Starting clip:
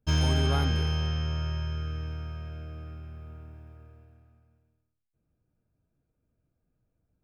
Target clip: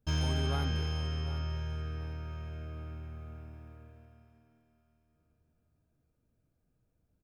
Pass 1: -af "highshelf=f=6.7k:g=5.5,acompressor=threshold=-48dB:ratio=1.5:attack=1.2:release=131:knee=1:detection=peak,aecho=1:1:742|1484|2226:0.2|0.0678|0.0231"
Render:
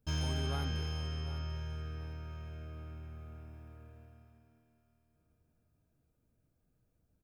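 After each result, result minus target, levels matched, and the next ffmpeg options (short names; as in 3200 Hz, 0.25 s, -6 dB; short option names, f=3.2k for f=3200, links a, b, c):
compressor: peak gain reduction +4 dB; 8000 Hz band +2.5 dB
-af "highshelf=f=6.7k:g=5.5,acompressor=threshold=-36.5dB:ratio=1.5:attack=1.2:release=131:knee=1:detection=peak,aecho=1:1:742|1484|2226:0.2|0.0678|0.0231"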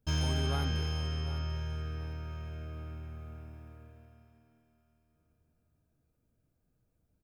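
8000 Hz band +2.5 dB
-af "acompressor=threshold=-36.5dB:ratio=1.5:attack=1.2:release=131:knee=1:detection=peak,aecho=1:1:742|1484|2226:0.2|0.0678|0.0231"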